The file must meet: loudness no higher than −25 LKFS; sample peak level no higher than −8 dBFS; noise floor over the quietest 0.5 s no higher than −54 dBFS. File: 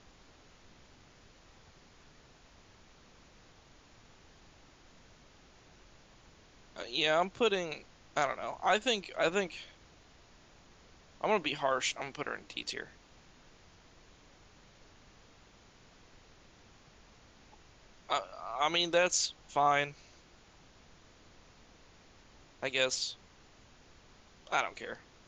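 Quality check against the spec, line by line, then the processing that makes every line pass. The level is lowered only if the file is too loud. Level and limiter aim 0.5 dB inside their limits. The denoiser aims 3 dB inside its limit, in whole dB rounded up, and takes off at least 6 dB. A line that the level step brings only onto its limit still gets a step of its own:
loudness −32.5 LKFS: in spec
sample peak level −14.5 dBFS: in spec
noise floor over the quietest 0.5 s −60 dBFS: in spec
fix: no processing needed

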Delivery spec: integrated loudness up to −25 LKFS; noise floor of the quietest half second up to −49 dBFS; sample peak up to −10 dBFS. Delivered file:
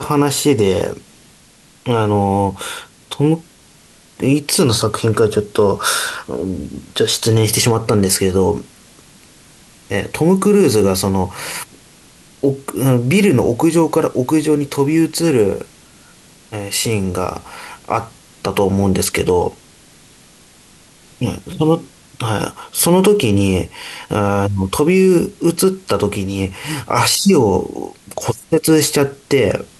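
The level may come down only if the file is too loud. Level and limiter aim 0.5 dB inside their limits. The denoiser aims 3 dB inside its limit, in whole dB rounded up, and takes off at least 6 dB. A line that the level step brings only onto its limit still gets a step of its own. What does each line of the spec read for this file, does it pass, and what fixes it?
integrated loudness −16.0 LKFS: out of spec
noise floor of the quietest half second −48 dBFS: out of spec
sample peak −3.5 dBFS: out of spec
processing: level −9.5 dB

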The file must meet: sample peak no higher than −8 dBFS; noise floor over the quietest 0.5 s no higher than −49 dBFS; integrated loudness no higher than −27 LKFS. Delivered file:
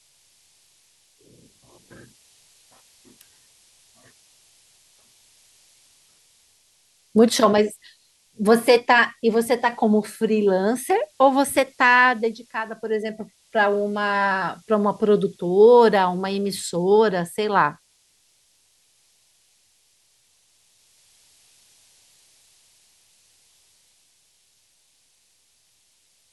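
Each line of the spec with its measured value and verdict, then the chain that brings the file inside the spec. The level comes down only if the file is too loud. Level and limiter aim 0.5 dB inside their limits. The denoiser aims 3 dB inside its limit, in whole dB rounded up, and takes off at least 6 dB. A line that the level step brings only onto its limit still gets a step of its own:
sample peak −4.0 dBFS: out of spec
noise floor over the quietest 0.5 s −63 dBFS: in spec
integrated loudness −19.5 LKFS: out of spec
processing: level −8 dB

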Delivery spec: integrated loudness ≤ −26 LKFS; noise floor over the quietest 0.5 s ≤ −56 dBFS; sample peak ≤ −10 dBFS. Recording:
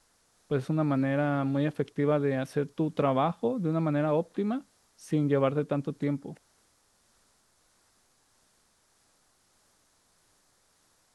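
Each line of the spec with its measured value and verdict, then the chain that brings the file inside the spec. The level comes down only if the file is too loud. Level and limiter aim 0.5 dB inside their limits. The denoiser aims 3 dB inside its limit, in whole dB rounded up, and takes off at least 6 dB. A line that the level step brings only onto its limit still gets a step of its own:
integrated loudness −29.0 LKFS: in spec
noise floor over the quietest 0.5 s −68 dBFS: in spec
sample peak −13.0 dBFS: in spec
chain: no processing needed

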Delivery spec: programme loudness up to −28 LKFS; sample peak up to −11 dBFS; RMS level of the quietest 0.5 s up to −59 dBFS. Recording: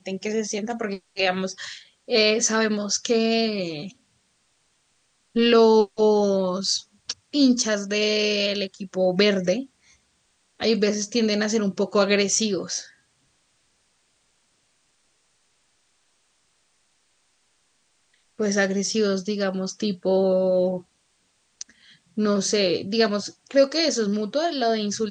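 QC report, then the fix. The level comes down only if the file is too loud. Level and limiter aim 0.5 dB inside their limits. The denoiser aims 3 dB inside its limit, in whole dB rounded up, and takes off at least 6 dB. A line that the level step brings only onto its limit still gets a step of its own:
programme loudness −22.5 LKFS: out of spec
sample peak −6.5 dBFS: out of spec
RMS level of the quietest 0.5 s −67 dBFS: in spec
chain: level −6 dB

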